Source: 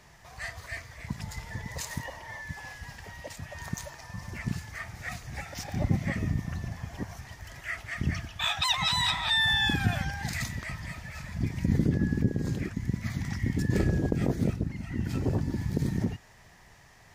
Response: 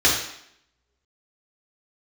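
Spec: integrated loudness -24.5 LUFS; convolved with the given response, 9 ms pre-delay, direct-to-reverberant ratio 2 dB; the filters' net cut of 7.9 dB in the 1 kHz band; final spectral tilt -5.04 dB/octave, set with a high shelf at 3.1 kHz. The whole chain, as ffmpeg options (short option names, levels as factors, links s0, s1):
-filter_complex "[0:a]equalizer=f=1000:t=o:g=-9,highshelf=f=3100:g=-8.5,asplit=2[s0][s1];[1:a]atrim=start_sample=2205,adelay=9[s2];[s1][s2]afir=irnorm=-1:irlink=0,volume=0.0891[s3];[s0][s3]amix=inputs=2:normalize=0,volume=1.88"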